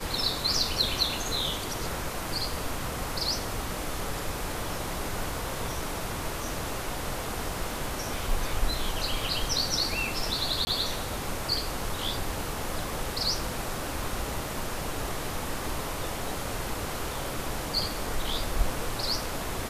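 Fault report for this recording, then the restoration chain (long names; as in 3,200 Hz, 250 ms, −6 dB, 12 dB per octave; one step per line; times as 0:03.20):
0:10.65–0:10.67: drop-out 20 ms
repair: repair the gap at 0:10.65, 20 ms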